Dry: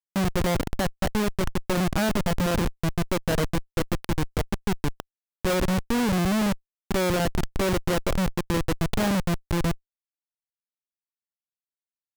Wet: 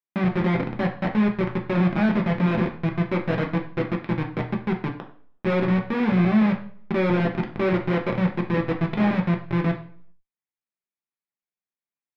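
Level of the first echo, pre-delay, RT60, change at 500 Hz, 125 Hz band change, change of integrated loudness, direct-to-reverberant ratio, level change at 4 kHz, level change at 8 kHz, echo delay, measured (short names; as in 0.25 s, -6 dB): none, 3 ms, 0.55 s, +1.5 dB, +3.0 dB, +2.5 dB, 1.0 dB, -7.5 dB, under -25 dB, none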